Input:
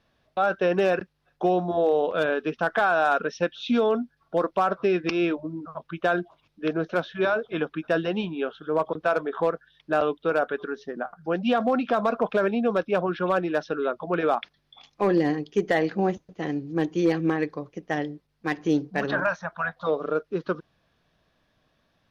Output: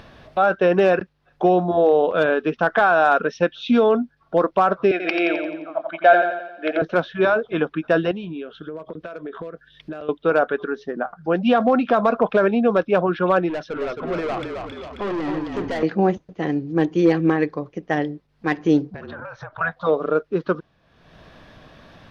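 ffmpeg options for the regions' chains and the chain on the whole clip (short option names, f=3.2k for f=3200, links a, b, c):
-filter_complex "[0:a]asettb=1/sr,asplit=3[a][b][c];[a]atrim=end=4.914[d];[b]atrim=start=4.91:end=6.82,asetpts=PTS-STARTPTS,afade=t=in:d=0.004:c=qsin,afade=t=out:st=1.906:d=0.004:c=qsin,highpass=f=300:w=0.5412,highpass=f=300:w=1.3066,equalizer=f=410:t=q:w=4:g=-6,equalizer=f=660:t=q:w=4:g=8,equalizer=f=1k:t=q:w=4:g=-8,equalizer=f=2.1k:t=q:w=4:g=7,lowpass=f=4.7k:w=0.5412,lowpass=f=4.7k:w=1.3066,aecho=1:1:1.3:0.35,atrim=end_sample=84231,aecho=1:1:87|174|261|348|435|522:0.531|0.265|0.133|0.0664|0.0332|0.0166,atrim=end_sample=84231[e];[c]atrim=start=6.816[f];[d][e]acrossfade=d=0.004:c1=hsin:c2=qsin[g];[g][f]acrossfade=d=0.004:c1=qsin:c2=hsin,asettb=1/sr,asplit=3[h][i][j];[h]atrim=end=8.114[k];[i]atrim=start=8.11:end=10.09,asetpts=PTS-STARTPTS,afade=t=in:d=0.004:c=qsin,afade=t=out:st=1.976:d=0.004:c=qsin,bandreject=f=830:w=6.9,acompressor=threshold=-32dB:ratio=12:attack=3.2:release=140:knee=1:detection=peak,equalizer=f=1k:w=0.99:g=-7.5[l];[j]atrim=start=10.086[m];[k][l]acrossfade=d=0.004:c1=hsin:c2=qsin[n];[n][m]acrossfade=d=0.004:c1=qsin:c2=hsin,asettb=1/sr,asplit=3[o][p][q];[o]atrim=end=13.494[r];[p]atrim=start=13.49:end=15.83,asetpts=PTS-STARTPTS,afade=t=in:d=0.004:c=qsin,afade=t=out:st=2.336:d=0.004:c=qsin,asuperstop=centerf=870:order=4:qfactor=5.9,aeval=exprs='(tanh(28.2*val(0)+0.15)-tanh(0.15))/28.2':c=same,asplit=7[s][t][u][v][w][x][y];[t]adelay=267,afreqshift=-34,volume=-5dB[z];[u]adelay=534,afreqshift=-68,volume=-10.8dB[aa];[v]adelay=801,afreqshift=-102,volume=-16.7dB[ab];[w]adelay=1068,afreqshift=-136,volume=-22.5dB[ac];[x]adelay=1335,afreqshift=-170,volume=-28.4dB[ad];[y]adelay=1602,afreqshift=-204,volume=-34.2dB[ae];[s][z][aa][ab][ac][ad][ae]amix=inputs=7:normalize=0,atrim=end_sample=103194[af];[q]atrim=start=15.826[ag];[r][af]acrossfade=d=0.004:c1=hsin:c2=qsin[ah];[ah][ag]acrossfade=d=0.004:c1=qsin:c2=hsin,asettb=1/sr,asplit=3[ai][aj][ak];[ai]atrim=end=18.944[al];[aj]atrim=start=18.94:end=19.61,asetpts=PTS-STARTPTS,afade=t=in:d=0.004:c=qsin,afade=t=out:st=0.666:d=0.004:c=qsin,lowpass=f=5.5k:w=0.5412,lowpass=f=5.5k:w=1.3066,afreqshift=-47,acompressor=threshold=-37dB:ratio=16:attack=3.2:release=140:knee=1:detection=peak[am];[ak]atrim=start=19.606[an];[al][am]acrossfade=d=0.004:c1=hsin:c2=qsin[ao];[ao][an]acrossfade=d=0.004:c1=qsin:c2=hsin,aemphasis=mode=reproduction:type=50kf,acompressor=mode=upward:threshold=-37dB:ratio=2.5,volume=6dB"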